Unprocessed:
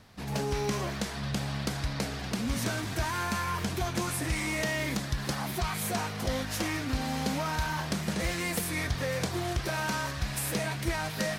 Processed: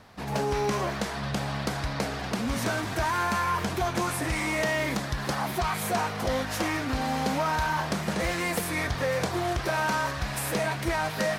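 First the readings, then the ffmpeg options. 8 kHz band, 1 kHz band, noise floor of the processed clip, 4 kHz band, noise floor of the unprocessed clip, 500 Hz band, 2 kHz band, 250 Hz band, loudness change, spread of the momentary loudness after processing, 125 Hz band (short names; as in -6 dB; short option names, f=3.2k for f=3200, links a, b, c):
0.0 dB, +6.5 dB, -34 dBFS, +1.0 dB, -37 dBFS, +5.5 dB, +4.0 dB, +2.0 dB, +3.0 dB, 4 LU, +0.5 dB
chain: -af "equalizer=f=840:t=o:w=2.7:g=7.5,asoftclip=type=tanh:threshold=-15dB"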